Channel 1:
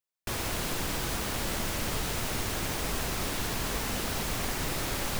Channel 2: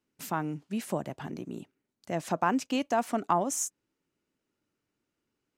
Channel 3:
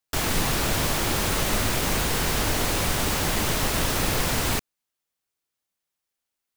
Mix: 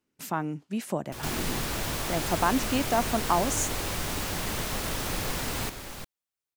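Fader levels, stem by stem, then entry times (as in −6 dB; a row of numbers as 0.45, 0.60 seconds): −8.5, +1.5, −7.5 decibels; 0.85, 0.00, 1.10 seconds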